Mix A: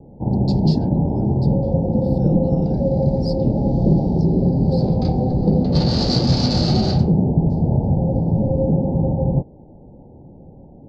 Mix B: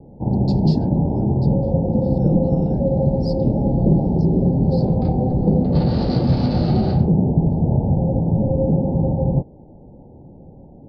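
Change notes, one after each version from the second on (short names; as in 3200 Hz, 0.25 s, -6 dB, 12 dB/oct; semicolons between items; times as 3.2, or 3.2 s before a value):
speech: add tilt -1.5 dB/oct; second sound: add air absorption 370 m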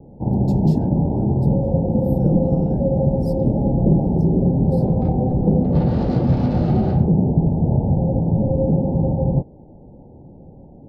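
master: remove synth low-pass 4600 Hz, resonance Q 6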